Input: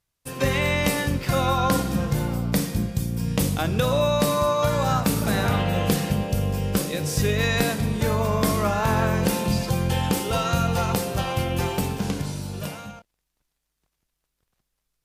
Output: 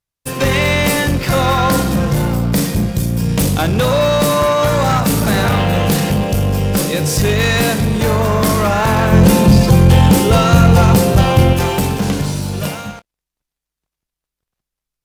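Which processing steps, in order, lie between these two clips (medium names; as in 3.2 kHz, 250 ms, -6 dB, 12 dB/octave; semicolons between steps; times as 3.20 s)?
waveshaping leveller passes 3; 9.12–11.53 s: bass shelf 440 Hz +8 dB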